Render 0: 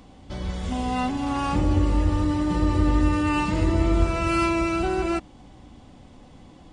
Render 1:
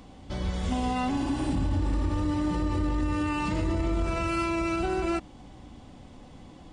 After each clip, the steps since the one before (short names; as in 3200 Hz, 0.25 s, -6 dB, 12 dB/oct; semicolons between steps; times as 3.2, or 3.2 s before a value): spectral repair 1.21–2.07, 240–7400 Hz both; limiter -19.5 dBFS, peak gain reduction 10.5 dB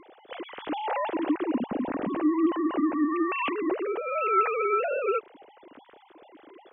sine-wave speech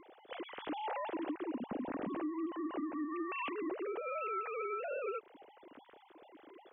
compressor 6:1, threshold -30 dBFS, peak gain reduction 11.5 dB; gain -6 dB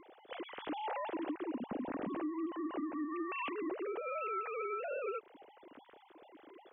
nothing audible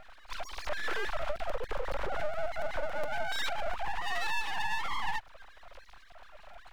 full-wave rectifier; crackling interface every 0.14 s, samples 256, repeat, from 0.65; gain +9 dB